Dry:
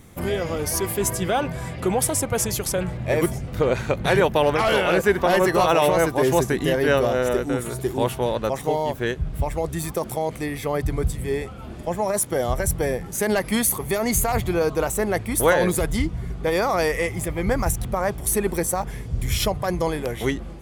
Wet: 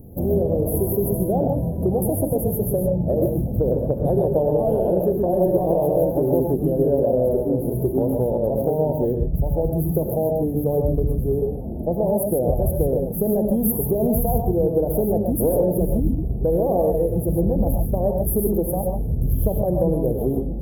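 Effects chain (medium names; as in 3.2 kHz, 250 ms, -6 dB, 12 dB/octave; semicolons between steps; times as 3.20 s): inverse Chebyshev band-stop 1.2–8.2 kHz, stop band 40 dB; compression, threshold -24 dBFS, peak gain reduction 10 dB; gated-style reverb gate 170 ms rising, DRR 2 dB; trim +6 dB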